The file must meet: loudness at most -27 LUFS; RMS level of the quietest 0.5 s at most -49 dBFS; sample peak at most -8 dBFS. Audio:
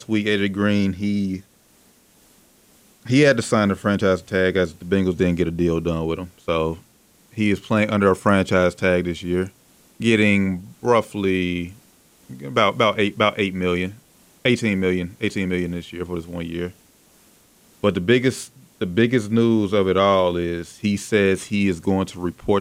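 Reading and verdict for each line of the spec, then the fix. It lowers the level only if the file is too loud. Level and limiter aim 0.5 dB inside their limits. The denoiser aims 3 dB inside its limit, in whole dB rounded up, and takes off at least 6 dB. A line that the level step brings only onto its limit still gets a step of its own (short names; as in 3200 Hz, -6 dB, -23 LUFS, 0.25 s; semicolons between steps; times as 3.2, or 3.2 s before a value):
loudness -20.5 LUFS: fail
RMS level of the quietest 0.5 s -56 dBFS: OK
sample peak -4.0 dBFS: fail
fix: gain -7 dB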